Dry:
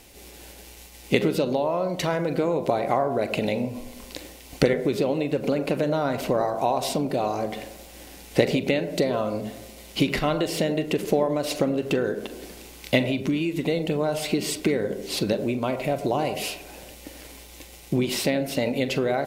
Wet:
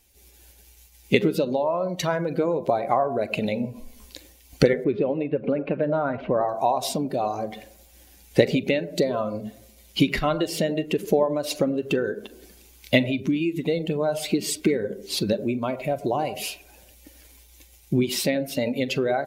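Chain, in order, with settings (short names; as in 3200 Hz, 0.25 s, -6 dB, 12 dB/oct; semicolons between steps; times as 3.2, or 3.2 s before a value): per-bin expansion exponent 1.5; 3.62–4.1 doubler 14 ms -4 dB; 4.84–6.49 LPF 2700 Hz 24 dB/oct; gain +4 dB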